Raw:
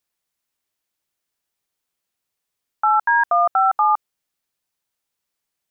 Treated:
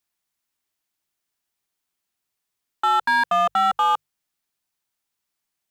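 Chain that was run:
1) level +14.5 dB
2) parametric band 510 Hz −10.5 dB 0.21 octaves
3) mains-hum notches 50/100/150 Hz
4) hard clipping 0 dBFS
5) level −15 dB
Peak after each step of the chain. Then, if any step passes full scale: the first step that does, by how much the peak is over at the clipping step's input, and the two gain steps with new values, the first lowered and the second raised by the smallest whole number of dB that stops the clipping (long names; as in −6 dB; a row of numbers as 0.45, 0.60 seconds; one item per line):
+5.0, +5.0, +5.0, 0.0, −15.0 dBFS
step 1, 5.0 dB
step 1 +9.5 dB, step 5 −10 dB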